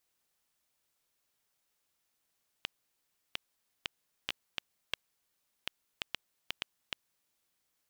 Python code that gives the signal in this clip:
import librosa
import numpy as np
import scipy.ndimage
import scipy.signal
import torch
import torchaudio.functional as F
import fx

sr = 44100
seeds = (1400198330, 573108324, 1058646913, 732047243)

y = fx.geiger_clicks(sr, seeds[0], length_s=4.58, per_s=3.0, level_db=-15.0)